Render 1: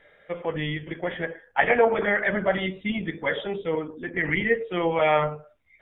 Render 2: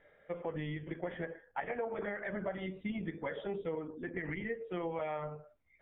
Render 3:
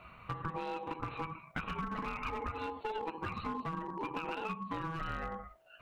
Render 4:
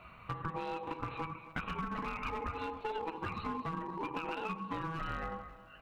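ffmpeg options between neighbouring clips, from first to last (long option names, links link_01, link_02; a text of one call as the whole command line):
ffmpeg -i in.wav -af "acompressor=threshold=-27dB:ratio=10,lowpass=frequency=1300:poles=1,volume=-5.5dB" out.wav
ffmpeg -i in.wav -af "acompressor=threshold=-47dB:ratio=4,aeval=exprs='val(0)*sin(2*PI*650*n/s)':channel_layout=same,aeval=exprs='clip(val(0),-1,0.00473)':channel_layout=same,volume=13.5dB" out.wav
ffmpeg -i in.wav -af "aecho=1:1:269|538|807|1076|1345:0.15|0.0778|0.0405|0.021|0.0109" out.wav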